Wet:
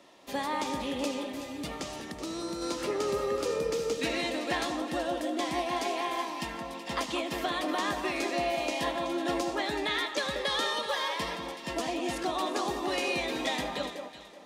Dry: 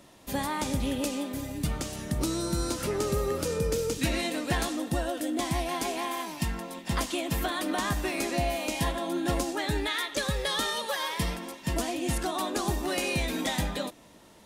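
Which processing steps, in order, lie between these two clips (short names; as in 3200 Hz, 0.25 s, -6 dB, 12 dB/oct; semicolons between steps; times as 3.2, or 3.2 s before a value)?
notch 1500 Hz, Q 13; on a send at -19.5 dB: reverb RT60 1.7 s, pre-delay 58 ms; 1.98–2.62 on the sum: compressor 2.5:1, threshold -31 dBFS, peak gain reduction 5 dB; three-band isolator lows -18 dB, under 260 Hz, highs -13 dB, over 6300 Hz; echo with dull and thin repeats by turns 0.188 s, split 1300 Hz, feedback 52%, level -6 dB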